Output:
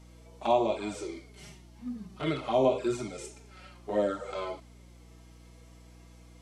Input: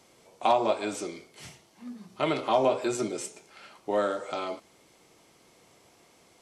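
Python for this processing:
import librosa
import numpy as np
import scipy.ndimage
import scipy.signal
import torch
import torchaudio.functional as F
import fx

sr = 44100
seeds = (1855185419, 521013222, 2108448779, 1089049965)

y = fx.env_flanger(x, sr, rest_ms=6.5, full_db=-21.0)
y = fx.hpss(y, sr, part='percussive', gain_db=-13)
y = fx.add_hum(y, sr, base_hz=60, snr_db=20)
y = y * 10.0 ** (4.0 / 20.0)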